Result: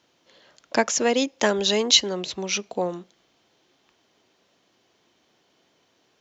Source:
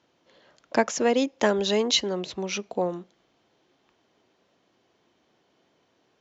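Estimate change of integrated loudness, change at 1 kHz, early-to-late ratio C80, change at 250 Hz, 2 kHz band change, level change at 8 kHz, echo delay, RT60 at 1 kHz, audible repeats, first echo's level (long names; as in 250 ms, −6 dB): +3.0 dB, +1.0 dB, no reverb audible, 0.0 dB, +3.5 dB, can't be measured, no echo audible, no reverb audible, no echo audible, no echo audible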